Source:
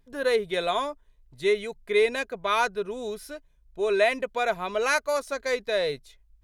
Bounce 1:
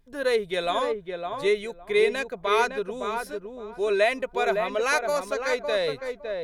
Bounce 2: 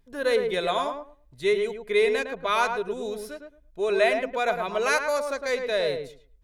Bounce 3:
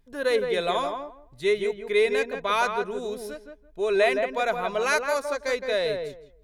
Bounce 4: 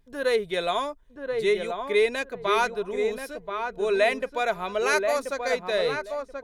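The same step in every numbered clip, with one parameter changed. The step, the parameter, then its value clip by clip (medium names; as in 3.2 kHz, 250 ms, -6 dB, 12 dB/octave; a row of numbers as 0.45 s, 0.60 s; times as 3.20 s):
filtered feedback delay, time: 560 ms, 109 ms, 166 ms, 1031 ms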